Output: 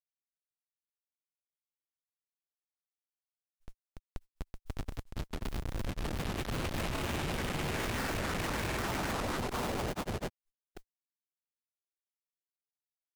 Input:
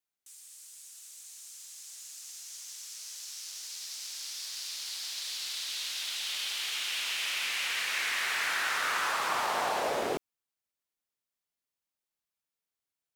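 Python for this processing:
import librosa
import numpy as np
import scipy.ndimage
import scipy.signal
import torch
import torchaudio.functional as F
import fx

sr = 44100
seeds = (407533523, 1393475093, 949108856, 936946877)

y = fx.schmitt(x, sr, flips_db=-28.0)
y = fx.mod_noise(y, sr, seeds[0], snr_db=29)
y = fx.granulator(y, sr, seeds[1], grain_ms=100.0, per_s=20.0, spray_ms=787.0, spread_st=0)
y = F.gain(torch.from_numpy(y), 3.5).numpy()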